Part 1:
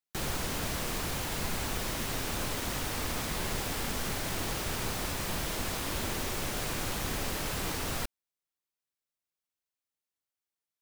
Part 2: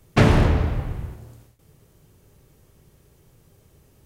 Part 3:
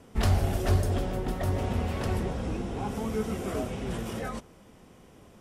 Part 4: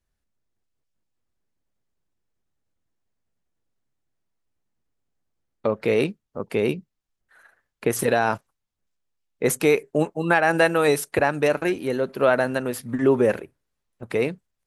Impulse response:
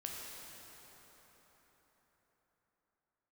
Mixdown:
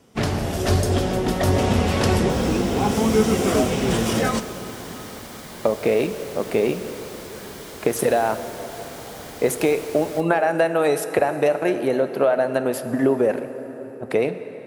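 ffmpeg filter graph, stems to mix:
-filter_complex "[0:a]bandreject=f=2.6k:w=12,adelay=2150,volume=-6dB,asplit=2[a][b];[b]volume=-10dB[c];[1:a]volume=-9.5dB[d];[2:a]equalizer=f=5.4k:t=o:w=1.8:g=6.5,dynaudnorm=f=210:g=5:m=15.5dB,volume=-5dB,asplit=2[e][f];[f]volume=-7.5dB[g];[3:a]equalizer=f=670:w=2.1:g=8.5,acompressor=threshold=-19dB:ratio=6,volume=-0.5dB,asplit=2[h][i];[i]volume=-5dB[j];[4:a]atrim=start_sample=2205[k];[c][g][j]amix=inputs=3:normalize=0[l];[l][k]afir=irnorm=-1:irlink=0[m];[a][d][e][h][m]amix=inputs=5:normalize=0,highpass=f=110:p=1,equalizer=f=300:t=o:w=2:g=2.5"

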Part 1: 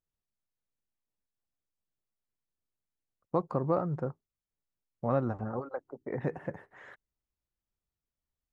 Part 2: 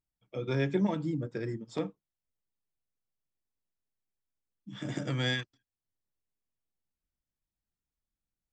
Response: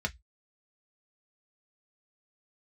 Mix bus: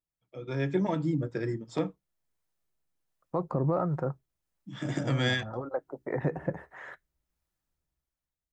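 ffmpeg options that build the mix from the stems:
-filter_complex "[0:a]alimiter=limit=-23dB:level=0:latency=1:release=33,acrossover=split=540[a][b];[a]aeval=exprs='val(0)*(1-0.5/2+0.5/2*cos(2*PI*1.4*n/s))':c=same[c];[b]aeval=exprs='val(0)*(1-0.5/2-0.5/2*cos(2*PI*1.4*n/s))':c=same[d];[c][d]amix=inputs=2:normalize=0,volume=-4.5dB,asplit=2[e][f];[f]volume=-14.5dB[g];[1:a]volume=-8dB,asplit=3[h][i][j];[i]volume=-16dB[k];[j]apad=whole_len=375776[l];[e][l]sidechaincompress=threshold=-58dB:ratio=8:attack=16:release=212[m];[2:a]atrim=start_sample=2205[n];[g][k]amix=inputs=2:normalize=0[o];[o][n]afir=irnorm=-1:irlink=0[p];[m][h][p]amix=inputs=3:normalize=0,dynaudnorm=f=150:g=9:m=11dB"

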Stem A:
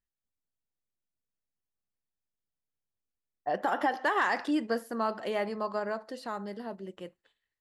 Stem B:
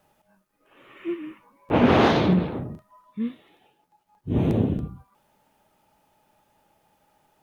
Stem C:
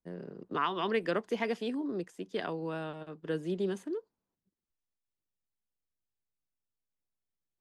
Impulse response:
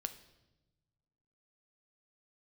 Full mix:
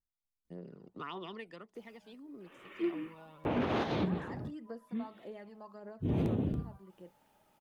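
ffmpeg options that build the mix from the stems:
-filter_complex "[0:a]tiltshelf=f=930:g=4.5,volume=-12.5dB,asplit=2[a][b];[1:a]adelay=1750,volume=-4dB[c];[2:a]bandreject=f=1.6k:w=7.3,adelay=450,volume=-0.5dB,afade=t=out:st=1.15:d=0.48:silence=0.251189[d];[b]apad=whole_len=404593[e];[c][e]sidechaincompress=threshold=-47dB:ratio=8:attack=50:release=169[f];[a][d]amix=inputs=2:normalize=0,aphaser=in_gain=1:out_gain=1:delay=1.4:decay=0.51:speed=1.7:type=triangular,acompressor=threshold=-58dB:ratio=1.5,volume=0dB[g];[f][g]amix=inputs=2:normalize=0,alimiter=limit=-23dB:level=0:latency=1:release=78"

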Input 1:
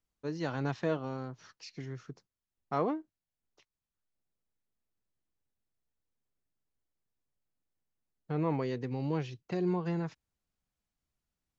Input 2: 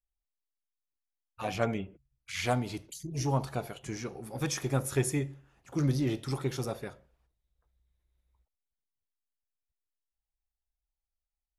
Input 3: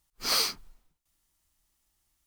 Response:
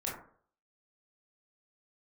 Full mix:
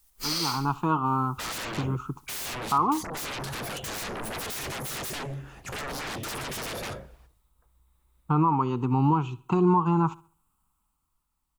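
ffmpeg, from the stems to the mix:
-filter_complex "[0:a]firequalizer=gain_entry='entry(340,0);entry(570,-20);entry(880,12);entry(1300,11);entry(1800,-24);entry(2600,-2);entry(5100,-20);entry(7800,6)':delay=0.05:min_phase=1,dynaudnorm=f=150:g=13:m=11dB,volume=1.5dB,asplit=2[a][b];[b]volume=-21.5dB[c];[1:a]acompressor=threshold=-33dB:ratio=12,aeval=exprs='0.0335*sin(PI/2*7.08*val(0)/0.0335)':c=same,volume=-2dB,afade=t=out:st=7.13:d=0.38:silence=0.316228,asplit=2[d][e];[2:a]acrossover=split=6300[f][g];[g]acompressor=threshold=-44dB:ratio=4:attack=1:release=60[h];[f][h]amix=inputs=2:normalize=0,alimiter=level_in=2dB:limit=-24dB:level=0:latency=1:release=164,volume=-2dB,crystalizer=i=2:c=0,volume=0.5dB,asplit=2[i][j];[j]volume=-5dB[k];[e]apad=whole_len=99796[l];[i][l]sidechaincompress=threshold=-56dB:ratio=8:attack=16:release=213[m];[c][k]amix=inputs=2:normalize=0,aecho=0:1:68|136|204|272|340:1|0.34|0.116|0.0393|0.0134[n];[a][d][m][n]amix=inputs=4:normalize=0,alimiter=limit=-13dB:level=0:latency=1:release=343"

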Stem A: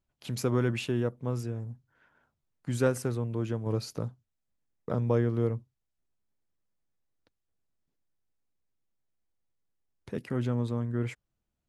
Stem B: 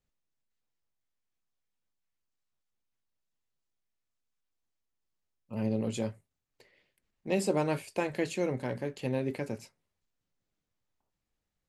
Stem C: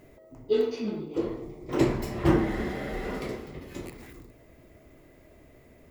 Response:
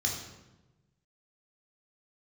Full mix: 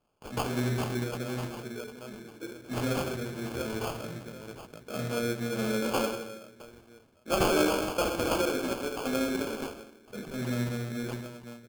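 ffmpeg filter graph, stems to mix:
-filter_complex "[0:a]highpass=f=160:w=0.5412,highpass=f=160:w=1.3066,equalizer=f=620:w=7.7:g=11.5,volume=-2dB,asplit=4[a][b][c][d];[b]volume=-7.5dB[e];[c]volume=-11.5dB[f];[1:a]highpass=f=280:w=0.5412,highpass=f=280:w=1.3066,volume=2dB,asplit=2[g][h];[h]volume=-5dB[i];[2:a]equalizer=f=880:w=0.64:g=-10.5,acontrast=61,adelay=1250,volume=-12dB,asplit=2[j][k];[k]volume=-23dB[l];[d]apad=whole_len=315571[m];[j][m]sidechaincompress=threshold=-42dB:ratio=8:attack=16:release=1130[n];[a][n]amix=inputs=2:normalize=0,highpass=230,lowpass=2.1k,alimiter=level_in=4dB:limit=-24dB:level=0:latency=1:release=440,volume=-4dB,volume=0dB[o];[3:a]atrim=start_sample=2205[p];[e][i][l]amix=inputs=3:normalize=0[q];[q][p]afir=irnorm=-1:irlink=0[r];[f]aecho=0:1:751|1502|2253|3004:1|0.23|0.0529|0.0122[s];[g][o][r][s]amix=inputs=4:normalize=0,aemphasis=mode=production:type=75kf,acrusher=samples=23:mix=1:aa=0.000001"

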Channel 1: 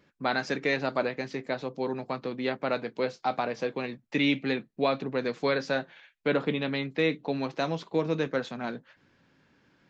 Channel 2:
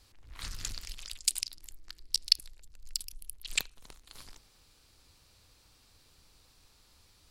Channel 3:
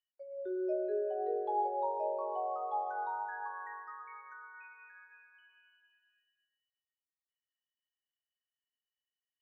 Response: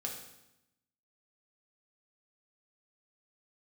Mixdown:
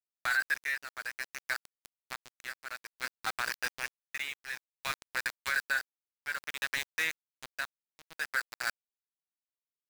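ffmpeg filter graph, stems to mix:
-filter_complex "[0:a]highpass=f=1.6k:t=q:w=5,volume=0dB[a];[1:a]flanger=delay=17.5:depth=2.2:speed=0.66,adelay=1200,volume=-14.5dB[b];[a][b]amix=inputs=2:normalize=0,aeval=exprs='val(0)*gte(abs(val(0)),0.0473)':c=same,tremolo=f=0.57:d=0.81,alimiter=limit=-19.5dB:level=0:latency=1:release=55"

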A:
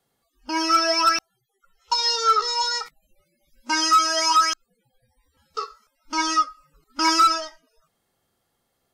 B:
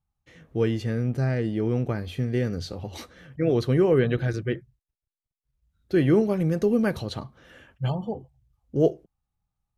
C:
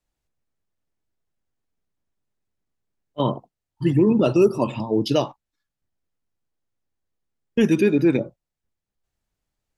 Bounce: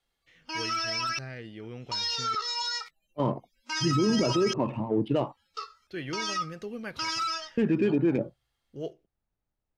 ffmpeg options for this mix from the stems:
-filter_complex "[0:a]volume=-16dB[a];[1:a]volume=-17.5dB,asplit=3[b][c][d];[b]atrim=end=2.35,asetpts=PTS-STARTPTS,afade=t=out:st=2.346:d=0.004:c=hsin[e];[c]atrim=start=2.35:end=5.29,asetpts=PTS-STARTPTS,volume=0[f];[d]atrim=start=5.29,asetpts=PTS-STARTPTS,afade=t=in:d=0.004:c=hsin[g];[e][f][g]concat=n=3:v=0:a=1[h];[2:a]lowpass=f=2.8k:w=0.5412,lowpass=f=2.8k:w=1.3066,adynamicsmooth=sensitivity=2:basefreq=2.1k,volume=-3.5dB[i];[a][h]amix=inputs=2:normalize=0,equalizer=f=2.9k:t=o:w=2.6:g=14,alimiter=limit=-22.5dB:level=0:latency=1:release=20,volume=0dB[j];[i][j]amix=inputs=2:normalize=0,alimiter=limit=-16.5dB:level=0:latency=1:release=20"

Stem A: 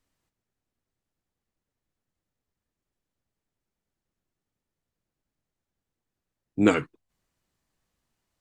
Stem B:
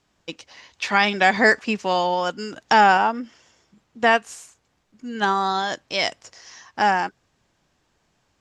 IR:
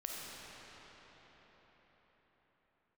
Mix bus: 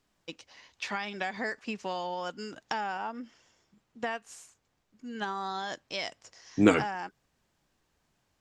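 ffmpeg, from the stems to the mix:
-filter_complex "[0:a]volume=-1dB[a];[1:a]acompressor=threshold=-22dB:ratio=6,volume=-8.5dB[b];[a][b]amix=inputs=2:normalize=0"

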